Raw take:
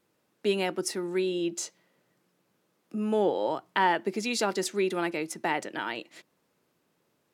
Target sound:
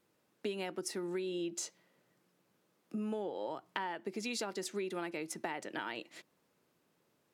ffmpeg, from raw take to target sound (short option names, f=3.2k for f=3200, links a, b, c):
-af "acompressor=threshold=-32dB:ratio=12,volume=-2.5dB"